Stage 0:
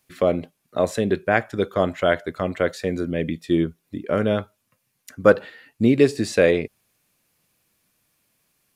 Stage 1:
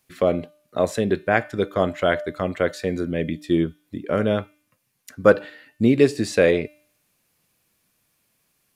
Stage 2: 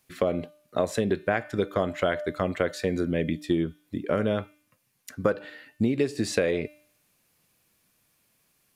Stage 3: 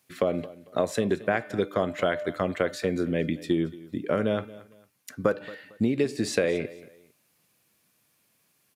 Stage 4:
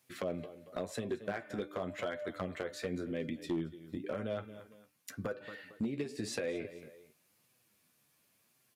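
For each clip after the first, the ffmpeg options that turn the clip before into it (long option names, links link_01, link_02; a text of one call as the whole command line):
ffmpeg -i in.wav -af "bandreject=frequency=299.2:width_type=h:width=4,bandreject=frequency=598.4:width_type=h:width=4,bandreject=frequency=897.6:width_type=h:width=4,bandreject=frequency=1196.8:width_type=h:width=4,bandreject=frequency=1496:width_type=h:width=4,bandreject=frequency=1795.2:width_type=h:width=4,bandreject=frequency=2094.4:width_type=h:width=4,bandreject=frequency=2393.6:width_type=h:width=4,bandreject=frequency=2692.8:width_type=h:width=4,bandreject=frequency=2992:width_type=h:width=4,bandreject=frequency=3291.2:width_type=h:width=4,bandreject=frequency=3590.4:width_type=h:width=4,bandreject=frequency=3889.6:width_type=h:width=4,bandreject=frequency=4188.8:width_type=h:width=4,bandreject=frequency=4488:width_type=h:width=4,bandreject=frequency=4787.2:width_type=h:width=4,bandreject=frequency=5086.4:width_type=h:width=4,bandreject=frequency=5385.6:width_type=h:width=4" out.wav
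ffmpeg -i in.wav -af "acompressor=threshold=-20dB:ratio=12" out.wav
ffmpeg -i in.wav -af "highpass=100,aecho=1:1:226|452:0.112|0.0325" out.wav
ffmpeg -i in.wav -af "acompressor=threshold=-33dB:ratio=2.5,flanger=delay=7.9:depth=5.9:regen=31:speed=0.93:shape=sinusoidal,volume=28dB,asoftclip=hard,volume=-28dB" out.wav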